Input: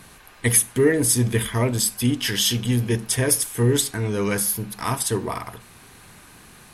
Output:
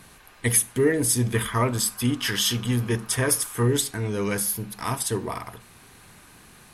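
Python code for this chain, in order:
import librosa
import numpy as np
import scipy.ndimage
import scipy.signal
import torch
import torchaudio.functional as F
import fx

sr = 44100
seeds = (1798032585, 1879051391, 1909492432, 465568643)

y = fx.peak_eq(x, sr, hz=1200.0, db=10.0, octaves=0.75, at=(1.33, 3.68))
y = y * 10.0 ** (-3.0 / 20.0)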